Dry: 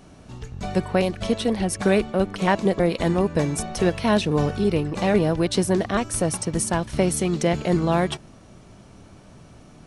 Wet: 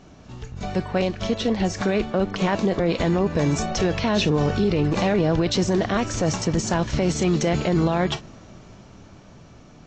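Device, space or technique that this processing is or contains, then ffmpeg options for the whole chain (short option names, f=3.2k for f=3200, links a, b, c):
low-bitrate web radio: -af "dynaudnorm=f=470:g=9:m=11.5dB,alimiter=limit=-13dB:level=0:latency=1:release=11" -ar 16000 -c:a aac -b:a 32k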